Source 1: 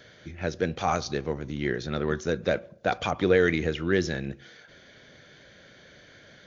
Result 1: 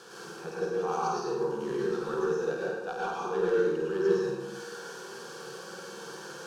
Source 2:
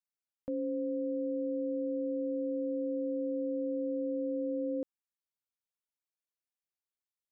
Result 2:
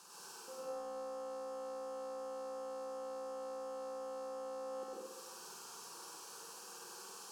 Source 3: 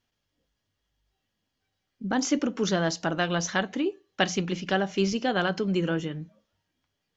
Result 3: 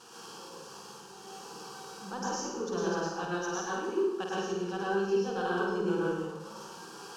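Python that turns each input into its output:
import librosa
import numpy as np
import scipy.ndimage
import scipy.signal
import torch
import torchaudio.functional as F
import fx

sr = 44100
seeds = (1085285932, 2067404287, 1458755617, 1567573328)

y = x + 0.5 * 10.0 ** (-34.5 / 20.0) * np.sign(x)
y = scipy.signal.sosfilt(scipy.signal.butter(2, 300.0, 'highpass', fs=sr, output='sos'), y)
y = fx.peak_eq(y, sr, hz=3600.0, db=-8.5, octaves=0.37)
y = fx.cheby_harmonics(y, sr, harmonics=(7,), levels_db=(-26,), full_scale_db=-7.5)
y = fx.rider(y, sr, range_db=4, speed_s=0.5)
y = fx.transient(y, sr, attack_db=-5, sustain_db=-9)
y = fx.air_absorb(y, sr, metres=61.0)
y = fx.fixed_phaser(y, sr, hz=410.0, stages=8)
y = fx.room_flutter(y, sr, wall_m=8.7, rt60_s=0.53)
y = fx.rev_plate(y, sr, seeds[0], rt60_s=0.96, hf_ratio=0.75, predelay_ms=90, drr_db=-5.5)
y = F.gain(torch.from_numpy(y), -4.5).numpy()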